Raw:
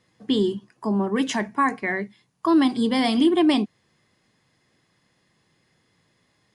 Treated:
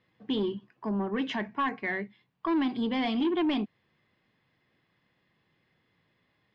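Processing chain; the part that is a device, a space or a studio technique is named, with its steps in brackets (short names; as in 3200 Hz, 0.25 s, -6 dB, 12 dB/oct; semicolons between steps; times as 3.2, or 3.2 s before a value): overdriven synthesiser ladder filter (soft clip -16 dBFS, distortion -15 dB; ladder low-pass 4000 Hz, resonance 25%)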